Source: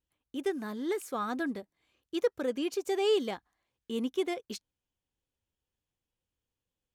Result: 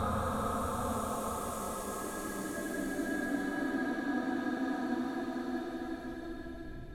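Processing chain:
slices reordered back to front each 109 ms, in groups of 3
wind on the microphone 99 Hz −40 dBFS
in parallel at −8 dB: soft clipping −32 dBFS, distortion −7 dB
on the sum: extreme stretch with random phases 9.8×, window 0.50 s, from 0:01.08
level −2 dB

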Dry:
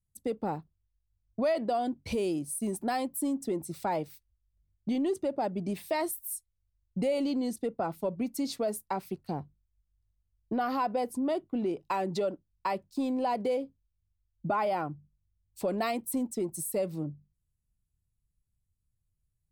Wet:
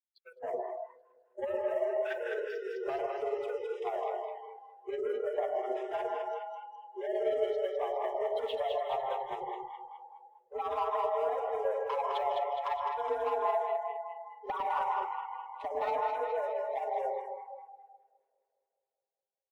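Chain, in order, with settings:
pitch glide at a constant tempo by −12 semitones ending unshifted
single-sideband voice off tune +260 Hz 170–3,500 Hz
high-shelf EQ 2,700 Hz −12 dB
comb filter 6 ms, depth 38%
downward compressor 5 to 1, threshold −36 dBFS, peak gain reduction 11 dB
leveller curve on the samples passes 2
amplitude tremolo 18 Hz, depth 49%
delay that swaps between a low-pass and a high-pass 104 ms, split 810 Hz, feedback 80%, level −2 dB
on a send at −2.5 dB: convolution reverb RT60 0.65 s, pre-delay 134 ms
on the sum: noise reduction from a noise print of the clip's start 22 dB

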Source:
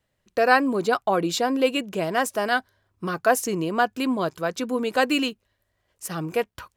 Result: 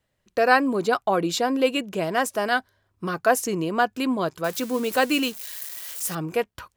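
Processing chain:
0:04.44–0:06.15: spike at every zero crossing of −25.5 dBFS

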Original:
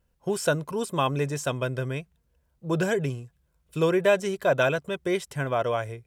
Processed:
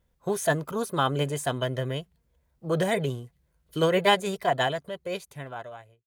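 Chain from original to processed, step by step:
fade-out on the ending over 1.96 s
formants moved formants +3 semitones

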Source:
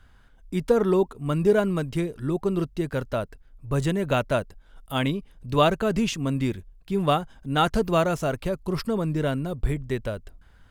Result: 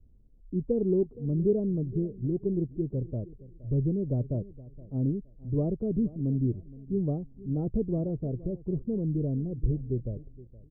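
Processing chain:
inverse Chebyshev low-pass filter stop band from 1,900 Hz, stop band 70 dB
dynamic equaliser 120 Hz, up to +6 dB, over −44 dBFS, Q 4.7
repeating echo 469 ms, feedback 25%, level −19 dB
level −3 dB

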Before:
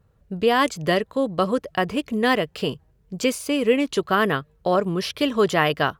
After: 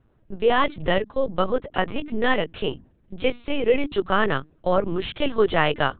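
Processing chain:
mains-hum notches 60/120/180/240/300 Hz
linear-prediction vocoder at 8 kHz pitch kept

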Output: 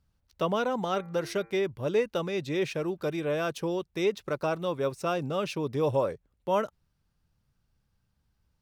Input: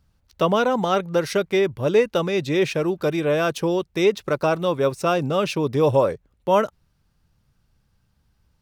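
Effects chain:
0:00.92–0:01.54: hum removal 114 Hz, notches 21
level −8.5 dB

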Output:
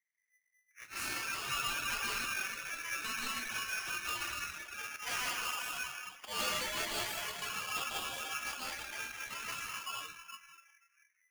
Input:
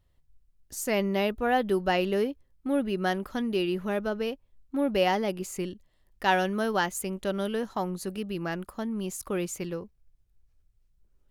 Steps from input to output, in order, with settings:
pitch glide at a constant tempo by +12 semitones starting unshifted
low-pass filter 9,500 Hz 12 dB per octave
convolution reverb RT60 2.7 s, pre-delay 112 ms, DRR −6.5 dB
volume swells 132 ms
spectral tilt +3 dB per octave
in parallel at −4 dB: sample-and-hold swept by an LFO 28×, swing 100% 0.46 Hz
on the sum: soft clipping −16.5 dBFS, distortion −14 dB
low-pass that shuts in the quiet parts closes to 320 Hz, open at −21.5 dBFS
dynamic equaliser 760 Hz, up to +4 dB, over −37 dBFS, Q 3
reverb reduction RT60 0.86 s
tuned comb filter 81 Hz, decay 0.27 s, harmonics all, mix 70%
ring modulator with a square carrier 2,000 Hz
level −8 dB

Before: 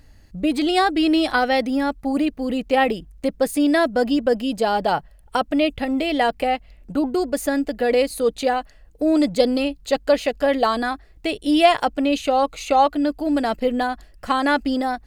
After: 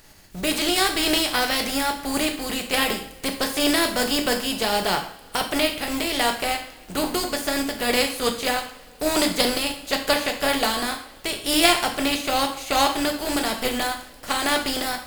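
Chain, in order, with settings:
compressing power law on the bin magnitudes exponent 0.49
coupled-rooms reverb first 0.52 s, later 4.6 s, from −28 dB, DRR 3 dB
level −4.5 dB

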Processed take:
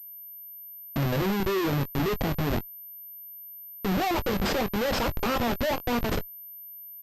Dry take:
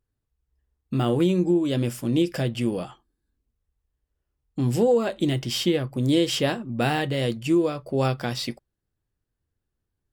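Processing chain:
gliding playback speed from 89% → 199%
comparator with hysteresis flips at −25.5 dBFS
double-tracking delay 21 ms −12 dB
switching amplifier with a slow clock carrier 13,000 Hz

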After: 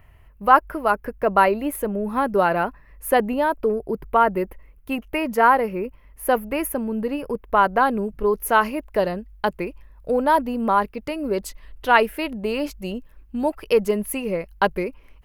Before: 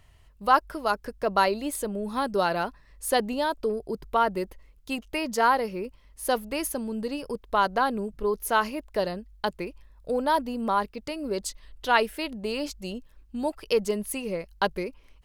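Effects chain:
flat-topped bell 5,500 Hz −16 dB, from 0:07.78 −9.5 dB
level +6 dB

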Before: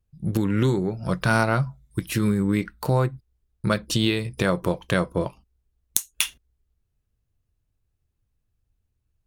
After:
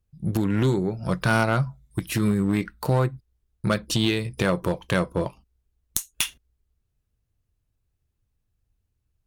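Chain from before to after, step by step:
asymmetric clip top −15.5 dBFS, bottom −8 dBFS

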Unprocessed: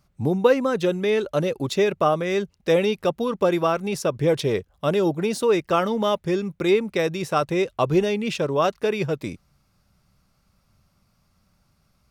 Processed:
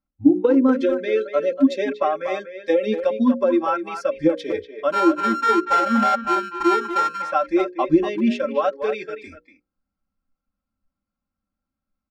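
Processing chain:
0:04.92–0:07.22: samples sorted by size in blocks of 32 samples
noise reduction from a noise print of the clip's start 22 dB
mains-hum notches 60/120/180/240/300/360/420/480/540 Hz
comb filter 3.8 ms, depth 97%
dynamic equaliser 290 Hz, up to +8 dB, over −34 dBFS, Q 0.86
downward compressor 10 to 1, threshold −15 dBFS, peak gain reduction 12 dB
head-to-tape spacing loss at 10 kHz 21 dB
hollow resonant body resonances 280/1,400 Hz, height 8 dB, ringing for 25 ms
far-end echo of a speakerphone 240 ms, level −9 dB

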